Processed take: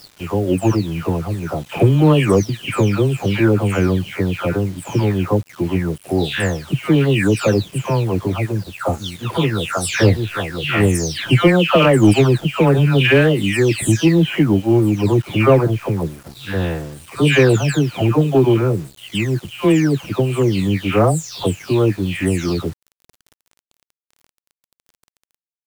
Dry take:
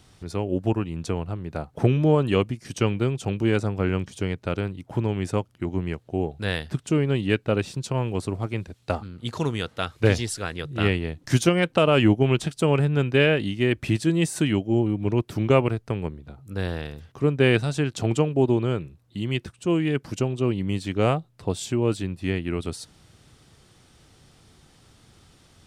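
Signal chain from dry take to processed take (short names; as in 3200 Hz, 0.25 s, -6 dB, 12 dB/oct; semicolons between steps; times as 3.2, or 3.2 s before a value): spectral delay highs early, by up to 0.471 s; sample leveller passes 1; bit-crush 8-bit; gain +5.5 dB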